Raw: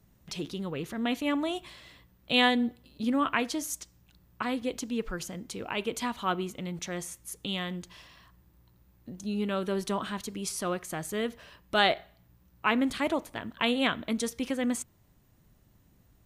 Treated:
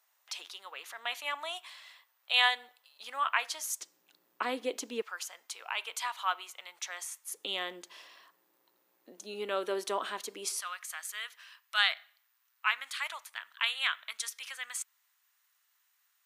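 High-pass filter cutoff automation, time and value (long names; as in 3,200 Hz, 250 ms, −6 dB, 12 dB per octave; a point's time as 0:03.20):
high-pass filter 24 dB per octave
810 Hz
from 0:03.80 330 Hz
from 0:05.02 830 Hz
from 0:07.31 370 Hz
from 0:10.60 1,200 Hz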